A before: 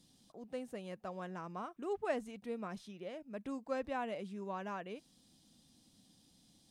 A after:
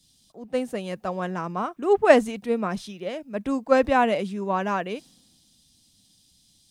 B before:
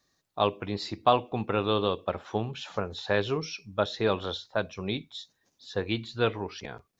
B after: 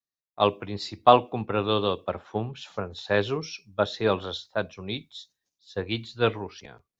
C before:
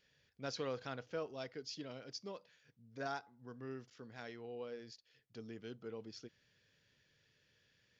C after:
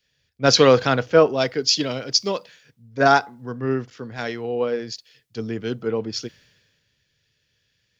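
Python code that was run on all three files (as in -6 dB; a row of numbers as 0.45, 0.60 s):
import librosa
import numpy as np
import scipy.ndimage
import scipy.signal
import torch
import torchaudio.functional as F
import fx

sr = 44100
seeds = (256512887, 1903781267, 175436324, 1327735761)

y = fx.band_widen(x, sr, depth_pct=70)
y = y * 10.0 ** (-1.5 / 20.0) / np.max(np.abs(y))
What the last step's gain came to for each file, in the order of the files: +16.5, +1.0, +23.0 dB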